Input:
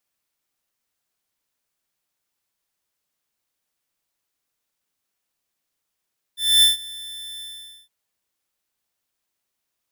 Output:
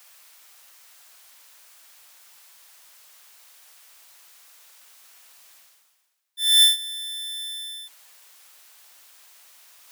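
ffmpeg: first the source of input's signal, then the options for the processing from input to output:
-f lavfi -i "aevalsrc='0.237*(2*lt(mod(3530*t,1),0.5)-1)':duration=1.513:sample_rate=44100,afade=type=in:duration=0.254,afade=type=out:start_time=0.254:duration=0.142:silence=0.075,afade=type=out:start_time=1.04:duration=0.473"
-af "highpass=730,areverse,acompressor=mode=upward:threshold=-29dB:ratio=2.5,areverse"

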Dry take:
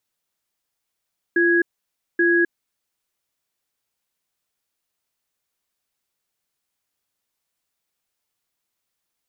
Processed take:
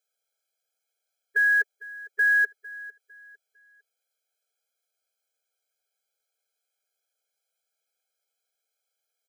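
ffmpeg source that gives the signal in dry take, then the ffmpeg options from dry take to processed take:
-f lavfi -i "aevalsrc='0.141*(sin(2*PI*344*t)+sin(2*PI*1660*t))*clip(min(mod(t,0.83),0.26-mod(t,0.83))/0.005,0,1)':duration=1.59:sample_rate=44100"
-af "acrusher=bits=7:mode=log:mix=0:aa=0.000001,aecho=1:1:453|906|1359:0.106|0.035|0.0115,afftfilt=real='re*eq(mod(floor(b*sr/1024/430),2),1)':imag='im*eq(mod(floor(b*sr/1024/430),2),1)':win_size=1024:overlap=0.75"

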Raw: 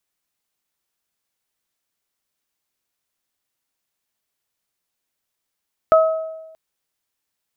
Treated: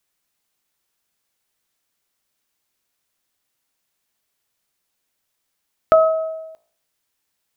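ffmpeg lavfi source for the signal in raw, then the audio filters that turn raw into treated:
-f lavfi -i "aevalsrc='0.398*pow(10,-3*t/1.09)*sin(2*PI*641*t)+0.224*pow(10,-3*t/0.65)*sin(2*PI*1282*t)':duration=0.63:sample_rate=44100"
-filter_complex "[0:a]bandreject=frequency=55.51:width_type=h:width=4,bandreject=frequency=111.02:width_type=h:width=4,bandreject=frequency=166.53:width_type=h:width=4,bandreject=frequency=222.04:width_type=h:width=4,bandreject=frequency=277.55:width_type=h:width=4,bandreject=frequency=333.06:width_type=h:width=4,bandreject=frequency=388.57:width_type=h:width=4,bandreject=frequency=444.08:width_type=h:width=4,bandreject=frequency=499.59:width_type=h:width=4,bandreject=frequency=555.1:width_type=h:width=4,bandreject=frequency=610.61:width_type=h:width=4,bandreject=frequency=666.12:width_type=h:width=4,bandreject=frequency=721.63:width_type=h:width=4,bandreject=frequency=777.14:width_type=h:width=4,bandreject=frequency=832.65:width_type=h:width=4,bandreject=frequency=888.16:width_type=h:width=4,bandreject=frequency=943.67:width_type=h:width=4,bandreject=frequency=999.18:width_type=h:width=4,bandreject=frequency=1054.69:width_type=h:width=4,bandreject=frequency=1110.2:width_type=h:width=4,bandreject=frequency=1165.71:width_type=h:width=4,bandreject=frequency=1221.22:width_type=h:width=4,bandreject=frequency=1276.73:width_type=h:width=4,asplit=2[link_01][link_02];[link_02]acompressor=threshold=-24dB:ratio=6,volume=-3dB[link_03];[link_01][link_03]amix=inputs=2:normalize=0"

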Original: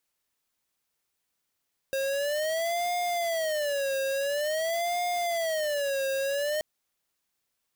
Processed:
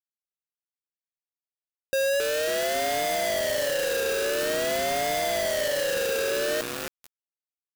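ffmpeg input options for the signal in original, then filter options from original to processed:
-f lavfi -i "aevalsrc='0.0376*(2*lt(mod((623.5*t-84.5/(2*PI*0.48)*sin(2*PI*0.48*t)),1),0.5)-1)':duration=4.68:sample_rate=44100"
-filter_complex "[0:a]asplit=2[link_01][link_02];[link_02]asplit=8[link_03][link_04][link_05][link_06][link_07][link_08][link_09][link_10];[link_03]adelay=270,afreqshift=-91,volume=-7dB[link_11];[link_04]adelay=540,afreqshift=-182,volume=-11.6dB[link_12];[link_05]adelay=810,afreqshift=-273,volume=-16.2dB[link_13];[link_06]adelay=1080,afreqshift=-364,volume=-20.7dB[link_14];[link_07]adelay=1350,afreqshift=-455,volume=-25.3dB[link_15];[link_08]adelay=1620,afreqshift=-546,volume=-29.9dB[link_16];[link_09]adelay=1890,afreqshift=-637,volume=-34.5dB[link_17];[link_10]adelay=2160,afreqshift=-728,volume=-39.1dB[link_18];[link_11][link_12][link_13][link_14][link_15][link_16][link_17][link_18]amix=inputs=8:normalize=0[link_19];[link_01][link_19]amix=inputs=2:normalize=0,acrusher=bits=4:mix=0:aa=0.000001"

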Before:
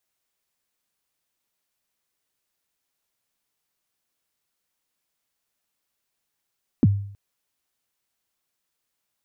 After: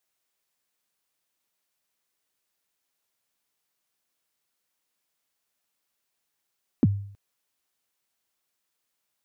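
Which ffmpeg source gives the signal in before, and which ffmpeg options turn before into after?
-f lavfi -i "aevalsrc='0.316*pow(10,-3*t/0.6)*sin(2*PI*(320*0.033/log(100/320)*(exp(log(100/320)*min(t,0.033)/0.033)-1)+100*max(t-0.033,0)))':duration=0.32:sample_rate=44100"
-af "lowshelf=frequency=150:gain=-6.5"

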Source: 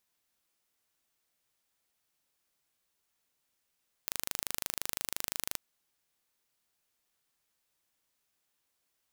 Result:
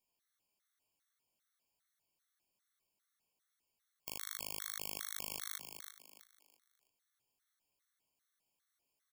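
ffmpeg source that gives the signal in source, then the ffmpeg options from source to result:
-f lavfi -i "aevalsrc='0.501*eq(mod(n,1709),0)':duration=1.51:sample_rate=44100"
-filter_complex "[0:a]flanger=delay=16:depth=7.8:speed=0.26,asplit=2[link_01][link_02];[link_02]asplit=4[link_03][link_04][link_05][link_06];[link_03]adelay=329,afreqshift=80,volume=-7dB[link_07];[link_04]adelay=658,afreqshift=160,volume=-16.6dB[link_08];[link_05]adelay=987,afreqshift=240,volume=-26.3dB[link_09];[link_06]adelay=1316,afreqshift=320,volume=-35.9dB[link_10];[link_07][link_08][link_09][link_10]amix=inputs=4:normalize=0[link_11];[link_01][link_11]amix=inputs=2:normalize=0,afftfilt=real='re*gt(sin(2*PI*2.5*pts/sr)*(1-2*mod(floor(b*sr/1024/1100),2)),0)':imag='im*gt(sin(2*PI*2.5*pts/sr)*(1-2*mod(floor(b*sr/1024/1100),2)),0)':win_size=1024:overlap=0.75"

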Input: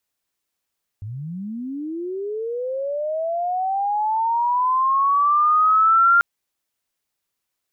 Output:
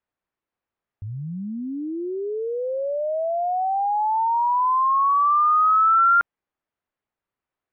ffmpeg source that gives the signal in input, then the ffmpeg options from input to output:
-f lavfi -i "aevalsrc='pow(10,(-28.5+17.5*t/5.19)/20)*sin(2*PI*(96*t+1304*t*t/(2*5.19)))':duration=5.19:sample_rate=44100"
-af "lowpass=1700"

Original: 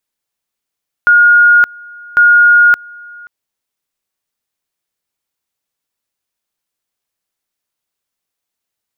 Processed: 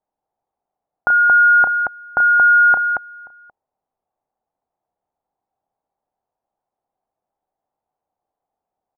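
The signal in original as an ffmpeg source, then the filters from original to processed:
-f lavfi -i "aevalsrc='pow(10,(-3.5-26.5*gte(mod(t,1.1),0.57))/20)*sin(2*PI*1430*t)':duration=2.2:sample_rate=44100"
-filter_complex "[0:a]lowpass=frequency=770:width_type=q:width=4.9,asplit=2[link_01][link_02];[link_02]aecho=0:1:32.07|227.4:0.316|0.631[link_03];[link_01][link_03]amix=inputs=2:normalize=0"

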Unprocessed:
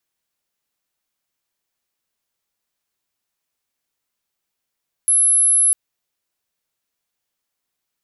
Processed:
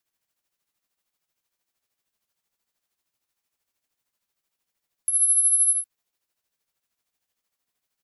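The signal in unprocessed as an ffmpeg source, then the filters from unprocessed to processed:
-f lavfi -i "aevalsrc='0.266*sin(2*PI*11000*t)':duration=0.65:sample_rate=44100"
-af "aeval=exprs='0.168*(abs(mod(val(0)/0.168+3,4)-2)-1)':channel_layout=same,tremolo=f=13:d=0.67,aecho=1:1:78|111:0.668|0.282"

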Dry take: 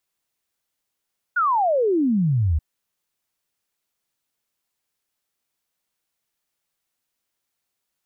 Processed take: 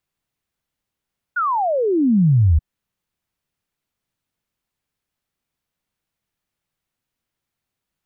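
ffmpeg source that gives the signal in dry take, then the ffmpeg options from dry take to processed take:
-f lavfi -i "aevalsrc='0.15*clip(min(t,1.23-t)/0.01,0,1)*sin(2*PI*1500*1.23/log(71/1500)*(exp(log(71/1500)*t/1.23)-1))':duration=1.23:sample_rate=44100"
-af "bass=frequency=250:gain=10,treble=frequency=4000:gain=-6,acompressor=threshold=-13dB:ratio=3"

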